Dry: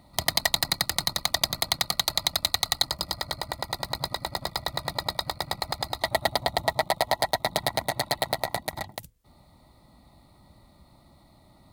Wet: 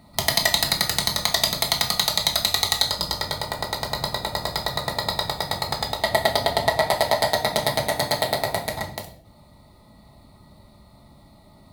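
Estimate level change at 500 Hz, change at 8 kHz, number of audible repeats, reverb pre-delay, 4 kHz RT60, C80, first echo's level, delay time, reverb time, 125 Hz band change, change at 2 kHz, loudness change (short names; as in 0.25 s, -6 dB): +6.5 dB, +4.5 dB, none, 5 ms, 0.45 s, 14.0 dB, none, none, 0.65 s, +6.0 dB, +5.0 dB, +4.5 dB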